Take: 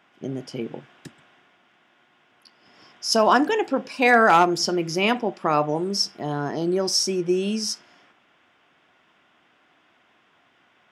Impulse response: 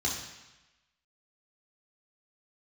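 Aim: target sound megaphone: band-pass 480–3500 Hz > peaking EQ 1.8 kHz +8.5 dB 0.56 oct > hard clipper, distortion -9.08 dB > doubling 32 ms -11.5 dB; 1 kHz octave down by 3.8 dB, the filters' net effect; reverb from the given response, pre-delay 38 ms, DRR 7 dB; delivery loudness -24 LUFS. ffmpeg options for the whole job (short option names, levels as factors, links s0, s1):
-filter_complex "[0:a]equalizer=f=1000:t=o:g=-6.5,asplit=2[s0][s1];[1:a]atrim=start_sample=2205,adelay=38[s2];[s1][s2]afir=irnorm=-1:irlink=0,volume=0.2[s3];[s0][s3]amix=inputs=2:normalize=0,highpass=480,lowpass=3500,equalizer=f=1800:t=o:w=0.56:g=8.5,asoftclip=type=hard:threshold=0.15,asplit=2[s4][s5];[s5]adelay=32,volume=0.266[s6];[s4][s6]amix=inputs=2:normalize=0,volume=1.06"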